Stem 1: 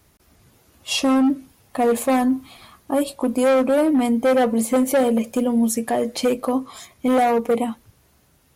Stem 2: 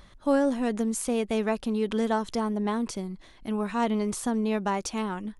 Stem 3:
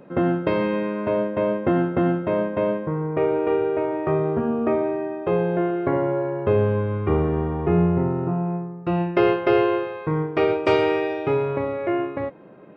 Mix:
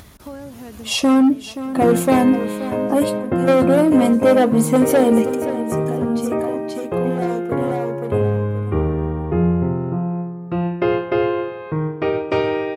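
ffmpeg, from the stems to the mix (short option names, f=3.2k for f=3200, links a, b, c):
-filter_complex "[0:a]volume=1.5dB,asplit=2[a][b];[b]volume=-13.5dB[c];[1:a]lowshelf=f=330:g=-4,volume=-18dB,asplit=2[d][e];[2:a]adelay=1650,volume=-1.5dB[f];[e]apad=whole_len=377370[g];[a][g]sidechaingate=range=-14dB:threshold=-59dB:ratio=16:detection=peak[h];[c]aecho=0:1:527|1054|1581|2108:1|0.28|0.0784|0.022[i];[h][d][f][i]amix=inputs=4:normalize=0,highpass=56,lowshelf=f=210:g=6.5,acompressor=mode=upward:threshold=-25dB:ratio=2.5"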